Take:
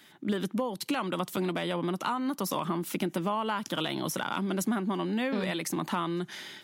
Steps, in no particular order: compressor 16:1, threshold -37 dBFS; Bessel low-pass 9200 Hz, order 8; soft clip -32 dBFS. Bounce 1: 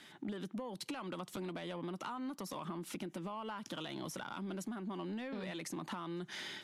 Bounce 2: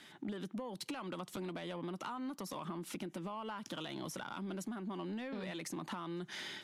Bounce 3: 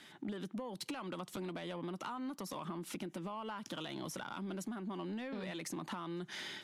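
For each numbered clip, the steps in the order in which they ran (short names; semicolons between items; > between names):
compressor > soft clip > Bessel low-pass; compressor > Bessel low-pass > soft clip; Bessel low-pass > compressor > soft clip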